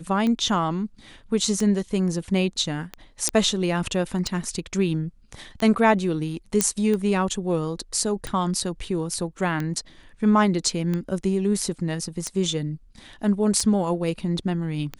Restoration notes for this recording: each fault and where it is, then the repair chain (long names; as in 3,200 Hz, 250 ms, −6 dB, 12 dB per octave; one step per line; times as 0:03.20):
scratch tick 45 rpm −15 dBFS
0:03.29: click −6 dBFS
0:06.61: click −3 dBFS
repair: click removal